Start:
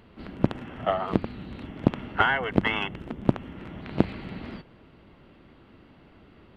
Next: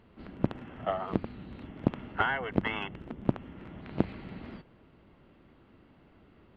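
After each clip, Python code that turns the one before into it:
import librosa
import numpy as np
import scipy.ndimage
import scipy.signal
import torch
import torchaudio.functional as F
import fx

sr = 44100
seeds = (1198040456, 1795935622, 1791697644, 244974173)

y = fx.high_shelf(x, sr, hz=4100.0, db=-8.0)
y = y * librosa.db_to_amplitude(-5.5)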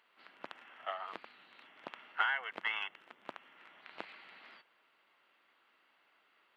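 y = scipy.signal.sosfilt(scipy.signal.butter(2, 1300.0, 'highpass', fs=sr, output='sos'), x)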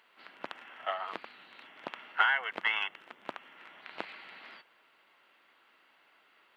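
y = fx.notch(x, sr, hz=1200.0, q=30.0)
y = y * librosa.db_to_amplitude(6.0)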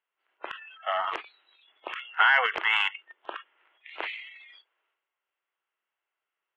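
y = scipy.signal.sosfilt(scipy.signal.ellip(3, 1.0, 40, [360.0, 3200.0], 'bandpass', fs=sr, output='sos'), x)
y = fx.noise_reduce_blind(y, sr, reduce_db=29)
y = fx.transient(y, sr, attack_db=-3, sustain_db=10)
y = y * librosa.db_to_amplitude(6.5)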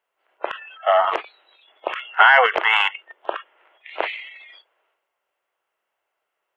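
y = fx.peak_eq(x, sr, hz=600.0, db=10.5, octaves=1.3)
y = y * librosa.db_to_amplitude(5.5)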